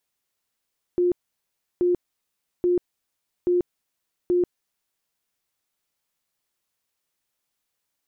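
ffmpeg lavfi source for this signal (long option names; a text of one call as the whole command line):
ffmpeg -f lavfi -i "aevalsrc='0.141*sin(2*PI*355*mod(t,0.83))*lt(mod(t,0.83),49/355)':duration=4.15:sample_rate=44100" out.wav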